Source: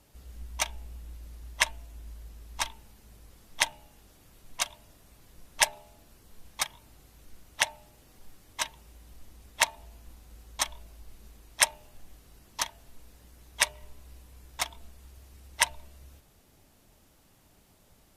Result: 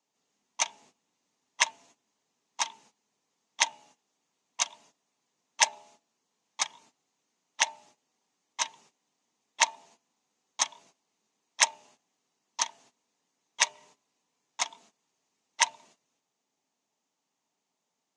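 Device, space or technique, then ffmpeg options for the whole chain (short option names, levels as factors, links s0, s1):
television speaker: -af "highpass=100,highpass=f=200:w=0.5412,highpass=f=200:w=1.3066,equalizer=f=200:t=q:w=4:g=-6,equalizer=f=330:t=q:w=4:g=-7,equalizer=f=560:t=q:w=4:g=-6,equalizer=f=930:t=q:w=4:g=4,equalizer=f=1500:t=q:w=4:g=-5,equalizer=f=6500:t=q:w=4:g=8,lowpass=f=7700:w=0.5412,lowpass=f=7700:w=1.3066,agate=range=0.141:threshold=0.00158:ratio=16:detection=peak,lowpass=10000"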